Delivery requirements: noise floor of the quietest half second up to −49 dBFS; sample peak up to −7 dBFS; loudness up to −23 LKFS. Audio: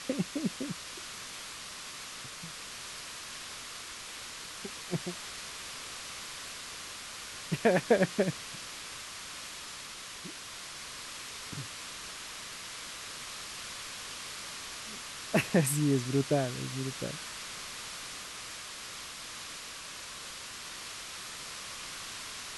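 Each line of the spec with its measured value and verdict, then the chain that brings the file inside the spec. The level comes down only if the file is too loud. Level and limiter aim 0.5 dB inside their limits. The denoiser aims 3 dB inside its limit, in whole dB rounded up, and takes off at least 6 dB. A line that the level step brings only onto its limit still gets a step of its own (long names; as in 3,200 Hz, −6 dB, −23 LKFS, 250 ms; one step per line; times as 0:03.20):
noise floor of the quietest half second −44 dBFS: out of spec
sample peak −12.5 dBFS: in spec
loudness −36.0 LKFS: in spec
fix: broadband denoise 8 dB, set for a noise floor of −44 dBFS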